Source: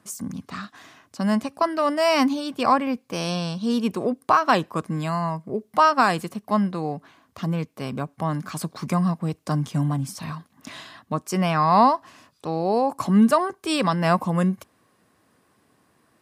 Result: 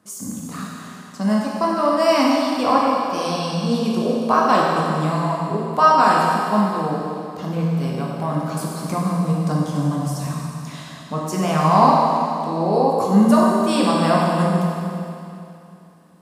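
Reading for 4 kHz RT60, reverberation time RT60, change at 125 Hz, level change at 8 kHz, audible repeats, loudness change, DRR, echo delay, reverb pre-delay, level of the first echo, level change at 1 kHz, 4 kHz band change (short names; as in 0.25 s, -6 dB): 2.7 s, 2.7 s, +4.0 dB, +4.0 dB, none, +4.0 dB, -4.0 dB, none, 13 ms, none, +4.5 dB, +3.0 dB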